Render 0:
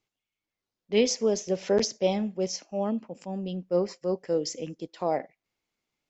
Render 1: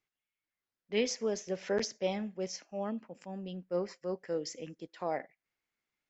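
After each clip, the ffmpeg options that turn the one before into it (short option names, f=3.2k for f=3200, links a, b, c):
-af "equalizer=f=1.7k:w=1.3:g=9,volume=-8.5dB"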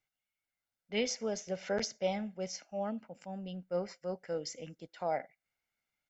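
-af "aecho=1:1:1.4:0.47,volume=-1dB"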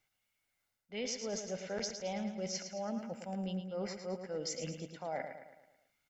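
-af "areverse,acompressor=threshold=-44dB:ratio=6,areverse,aecho=1:1:109|218|327|436|545|654:0.398|0.199|0.0995|0.0498|0.0249|0.0124,volume=7dB"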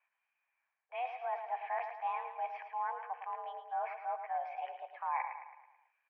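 -af "highpass=f=390:t=q:w=0.5412,highpass=f=390:t=q:w=1.307,lowpass=f=2.2k:t=q:w=0.5176,lowpass=f=2.2k:t=q:w=0.7071,lowpass=f=2.2k:t=q:w=1.932,afreqshift=250,volume=4dB"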